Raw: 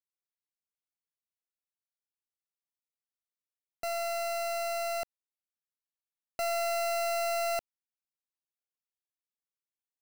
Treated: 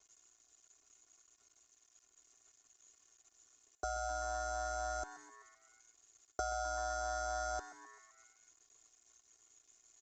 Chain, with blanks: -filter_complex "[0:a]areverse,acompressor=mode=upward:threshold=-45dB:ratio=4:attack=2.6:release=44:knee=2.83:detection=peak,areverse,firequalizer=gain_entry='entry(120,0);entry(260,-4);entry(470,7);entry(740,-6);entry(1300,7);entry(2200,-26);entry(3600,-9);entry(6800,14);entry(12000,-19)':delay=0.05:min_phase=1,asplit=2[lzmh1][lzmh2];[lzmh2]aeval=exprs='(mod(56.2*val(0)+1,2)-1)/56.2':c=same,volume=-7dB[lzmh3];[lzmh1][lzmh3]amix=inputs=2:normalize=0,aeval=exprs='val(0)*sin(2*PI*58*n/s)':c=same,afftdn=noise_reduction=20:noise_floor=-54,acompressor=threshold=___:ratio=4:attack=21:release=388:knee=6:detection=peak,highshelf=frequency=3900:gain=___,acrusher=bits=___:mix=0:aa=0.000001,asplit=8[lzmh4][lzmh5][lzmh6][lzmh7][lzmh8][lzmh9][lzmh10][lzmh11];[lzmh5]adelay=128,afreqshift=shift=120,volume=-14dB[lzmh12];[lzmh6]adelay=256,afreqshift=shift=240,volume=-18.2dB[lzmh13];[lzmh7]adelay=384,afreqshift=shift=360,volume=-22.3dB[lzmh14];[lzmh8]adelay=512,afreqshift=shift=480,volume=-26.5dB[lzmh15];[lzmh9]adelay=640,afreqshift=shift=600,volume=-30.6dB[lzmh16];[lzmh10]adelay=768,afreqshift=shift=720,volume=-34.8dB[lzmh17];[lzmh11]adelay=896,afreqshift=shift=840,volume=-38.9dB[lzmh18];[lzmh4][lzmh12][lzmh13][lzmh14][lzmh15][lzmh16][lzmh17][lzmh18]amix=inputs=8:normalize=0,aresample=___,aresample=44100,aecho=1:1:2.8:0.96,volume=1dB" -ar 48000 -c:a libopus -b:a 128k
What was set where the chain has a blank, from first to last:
-41dB, -7, 10, 16000